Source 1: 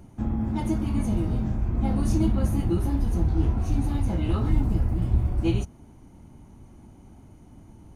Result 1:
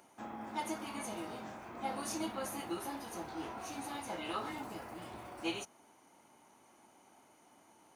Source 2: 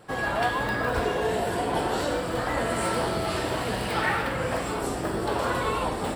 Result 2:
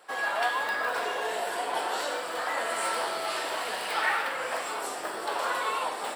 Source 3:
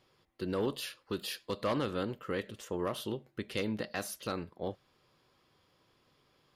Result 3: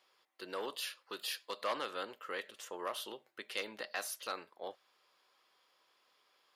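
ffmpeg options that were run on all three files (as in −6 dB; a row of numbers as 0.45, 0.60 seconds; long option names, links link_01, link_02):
-af "highpass=700"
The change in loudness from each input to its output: −16.0, −2.5, −4.5 LU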